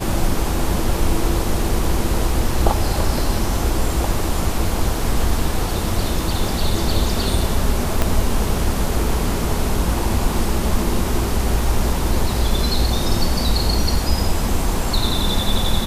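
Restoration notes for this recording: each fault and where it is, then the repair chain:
0:08.02: click −3 dBFS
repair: click removal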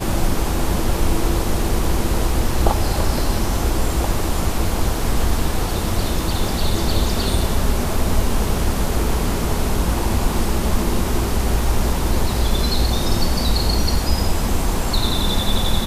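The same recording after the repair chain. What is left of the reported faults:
0:08.02: click

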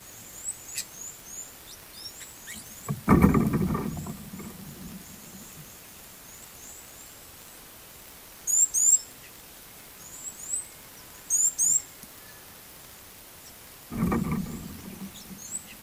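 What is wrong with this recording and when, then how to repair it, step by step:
surface crackle 50 per second −34 dBFS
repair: click removal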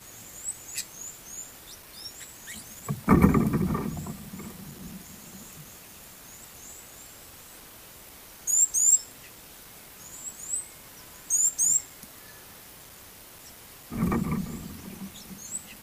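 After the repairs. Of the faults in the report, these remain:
none of them is left

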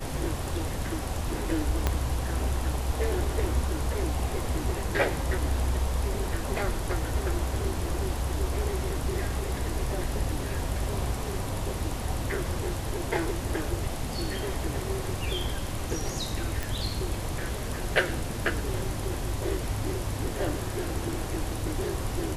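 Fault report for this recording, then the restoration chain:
0:01.87: click −10 dBFS
0:16.63: click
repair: click removal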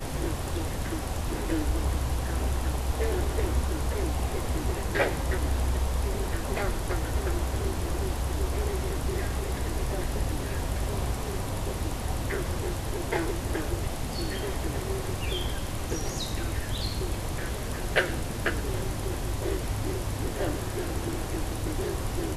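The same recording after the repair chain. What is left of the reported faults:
0:01.87: click

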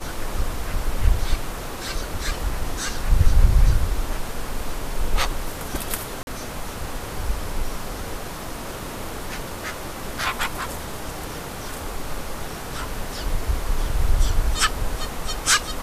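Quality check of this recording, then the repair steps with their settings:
0:06.23–0:06.27: drop-out 41 ms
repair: repair the gap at 0:06.23, 41 ms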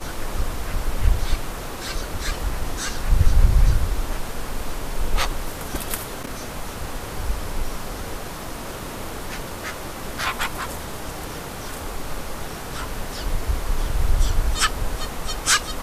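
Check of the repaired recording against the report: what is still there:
none of them is left

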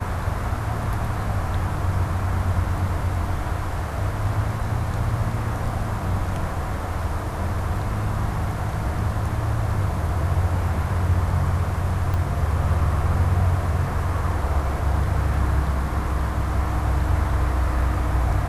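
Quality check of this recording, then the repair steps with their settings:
0:12.14: click −15 dBFS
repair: click removal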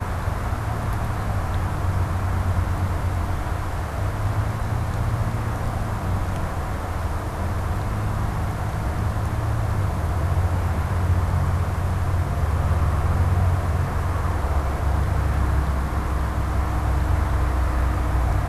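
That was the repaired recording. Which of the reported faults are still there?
0:12.14: click

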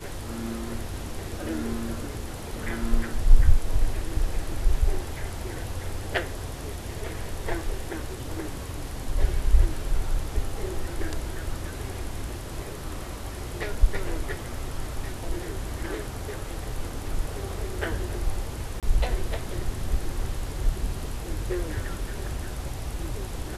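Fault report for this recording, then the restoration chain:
0:18.80–0:18.83: drop-out 27 ms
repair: repair the gap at 0:18.80, 27 ms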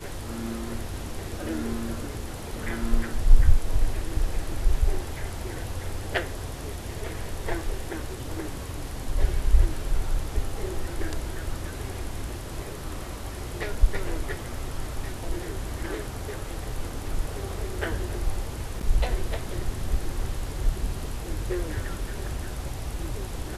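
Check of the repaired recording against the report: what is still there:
none of them is left

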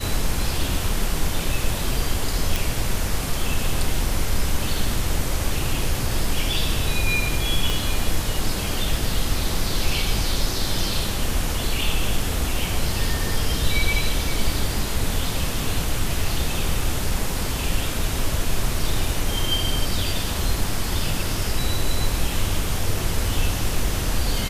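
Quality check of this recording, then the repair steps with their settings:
0:02.56: click
0:07.70: click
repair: click removal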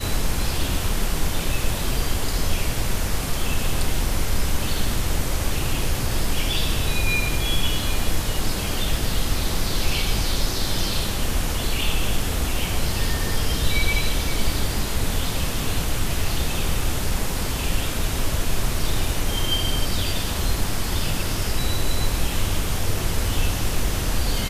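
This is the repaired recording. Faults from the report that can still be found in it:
0:07.70: click

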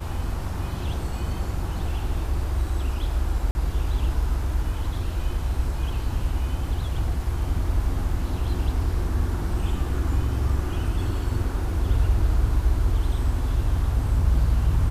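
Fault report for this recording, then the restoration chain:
0:03.51–0:03.55: drop-out 40 ms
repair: repair the gap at 0:03.51, 40 ms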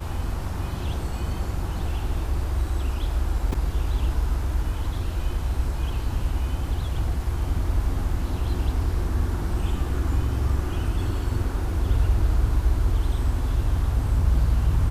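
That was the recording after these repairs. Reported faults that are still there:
none of them is left

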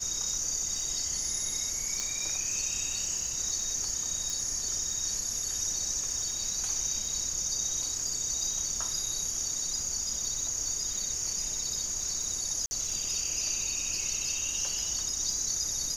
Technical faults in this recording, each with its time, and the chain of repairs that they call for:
surface crackle 33 per second −36 dBFS
0:02.00: click −18 dBFS
0:04.30: click
0:12.66–0:12.71: drop-out 50 ms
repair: click removal
repair the gap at 0:12.66, 50 ms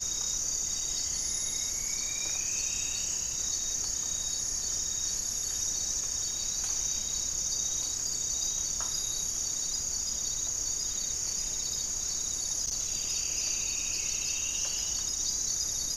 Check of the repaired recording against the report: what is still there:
0:04.30: click

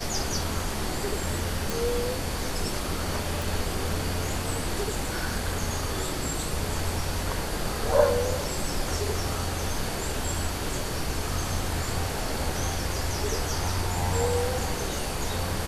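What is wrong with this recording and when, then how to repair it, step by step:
0:01.70: click
0:03.42: click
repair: click removal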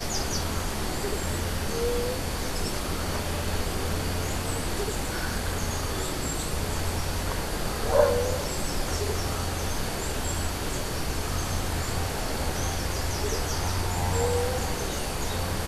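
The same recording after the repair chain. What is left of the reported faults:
none of them is left

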